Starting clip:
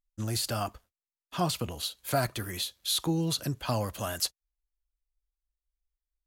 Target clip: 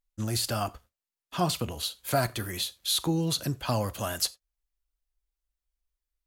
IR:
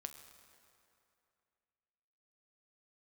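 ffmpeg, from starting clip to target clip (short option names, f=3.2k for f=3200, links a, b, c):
-filter_complex "[0:a]asplit=2[a][b];[1:a]atrim=start_sample=2205,atrim=end_sample=4410[c];[b][c]afir=irnorm=-1:irlink=0,volume=4dB[d];[a][d]amix=inputs=2:normalize=0,volume=-4dB"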